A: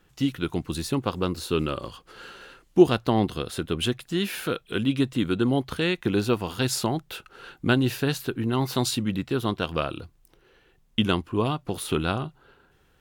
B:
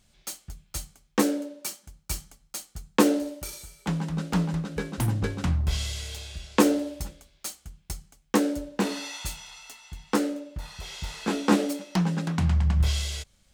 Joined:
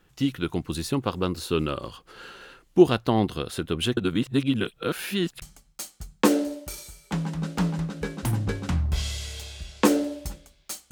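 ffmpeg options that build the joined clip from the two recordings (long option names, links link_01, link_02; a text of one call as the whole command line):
ffmpeg -i cue0.wav -i cue1.wav -filter_complex "[0:a]apad=whole_dur=10.91,atrim=end=10.91,asplit=2[link_01][link_02];[link_01]atrim=end=3.972[link_03];[link_02]atrim=start=3.968:end=5.422,asetpts=PTS-STARTPTS,areverse[link_04];[1:a]atrim=start=2.168:end=7.66[link_05];[link_03][link_04]acrossfade=duration=0.004:curve1=hsin:curve2=hsin[link_06];[link_06][link_05]acrossfade=duration=0.004:curve1=hsin:curve2=hsin" out.wav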